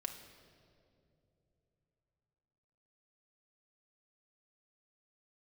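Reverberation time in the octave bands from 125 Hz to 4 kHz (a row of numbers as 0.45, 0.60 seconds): 4.4, 3.6, 3.5, 2.2, 1.7, 1.6 seconds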